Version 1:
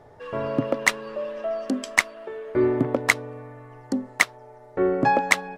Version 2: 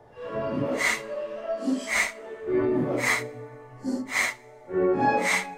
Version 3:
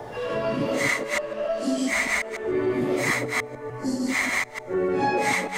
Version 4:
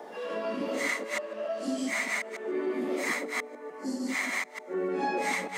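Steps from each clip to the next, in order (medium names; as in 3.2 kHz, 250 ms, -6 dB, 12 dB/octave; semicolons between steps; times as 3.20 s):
phase randomisation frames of 200 ms; two-slope reverb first 0.5 s, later 2.2 s, from -17 dB, DRR 19 dB; trim -2 dB
chunks repeated in reverse 148 ms, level -0.5 dB; three bands compressed up and down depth 70%; trim -1.5 dB
steep high-pass 180 Hz 72 dB/octave; trim -6.5 dB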